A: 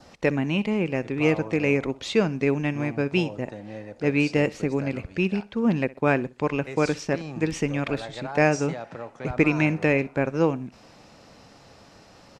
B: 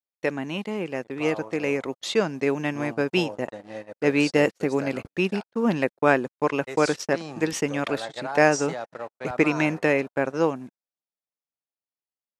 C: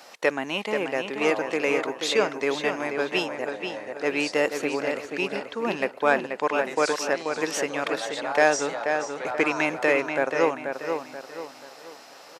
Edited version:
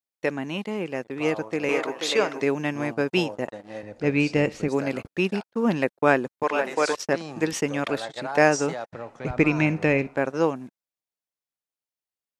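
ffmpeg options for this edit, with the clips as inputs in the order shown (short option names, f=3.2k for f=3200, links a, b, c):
-filter_complex "[2:a]asplit=2[a][b];[0:a]asplit=2[c][d];[1:a]asplit=5[e][f][g][h][i];[e]atrim=end=1.692[j];[a]atrim=start=1.688:end=2.422[k];[f]atrim=start=2.418:end=3.832[l];[c]atrim=start=3.828:end=4.682[m];[g]atrim=start=4.678:end=6.432[n];[b]atrim=start=6.428:end=6.952[o];[h]atrim=start=6.948:end=8.932[p];[d]atrim=start=8.928:end=10.162[q];[i]atrim=start=10.158[r];[j][k]acrossfade=d=0.004:c1=hsin:c2=hsin[s];[s][l]acrossfade=d=0.004:c1=hsin:c2=hsin[t];[t][m]acrossfade=d=0.004:c1=hsin:c2=hsin[u];[u][n]acrossfade=d=0.004:c1=hsin:c2=hsin[v];[v][o]acrossfade=d=0.004:c1=hsin:c2=hsin[w];[w][p]acrossfade=d=0.004:c1=hsin:c2=hsin[x];[x][q]acrossfade=d=0.004:c1=hsin:c2=hsin[y];[y][r]acrossfade=d=0.004:c1=hsin:c2=hsin"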